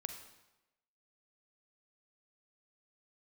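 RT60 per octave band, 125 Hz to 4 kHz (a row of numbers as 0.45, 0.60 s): 0.95, 0.95, 1.0, 1.0, 0.90, 0.85 s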